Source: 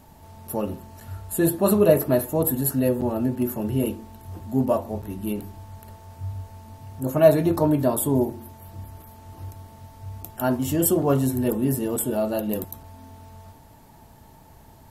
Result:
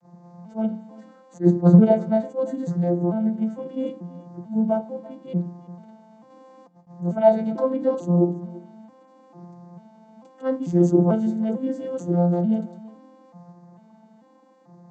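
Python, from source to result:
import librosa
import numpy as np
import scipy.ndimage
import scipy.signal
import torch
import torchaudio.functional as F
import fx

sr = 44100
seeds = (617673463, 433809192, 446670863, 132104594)

p1 = fx.vocoder_arp(x, sr, chord='major triad', root=53, every_ms=444)
p2 = fx.low_shelf(p1, sr, hz=230.0, db=4.5)
p3 = fx.hum_notches(p2, sr, base_hz=50, count=3)
p4 = p3 + 0.76 * np.pad(p3, (int(5.9 * sr / 1000.0), 0))[:len(p3)]
p5 = fx.over_compress(p4, sr, threshold_db=-48.0, ratio=-0.5, at=(6.3, 6.87))
p6 = p5 + fx.echo_single(p5, sr, ms=338, db=-20.5, dry=0)
p7 = fx.attack_slew(p6, sr, db_per_s=330.0)
y = F.gain(torch.from_numpy(p7), -1.0).numpy()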